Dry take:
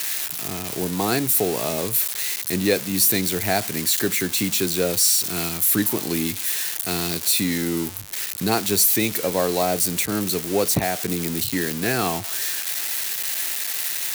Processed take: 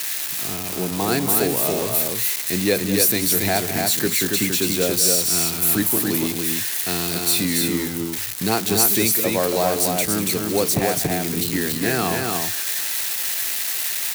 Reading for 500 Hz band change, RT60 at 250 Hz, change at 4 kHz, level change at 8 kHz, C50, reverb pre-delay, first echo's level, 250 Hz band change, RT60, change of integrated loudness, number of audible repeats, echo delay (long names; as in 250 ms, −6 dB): +2.0 dB, no reverb audible, +2.0 dB, +2.0 dB, no reverb audible, no reverb audible, −12.0 dB, +1.5 dB, no reverb audible, +2.0 dB, 2, 198 ms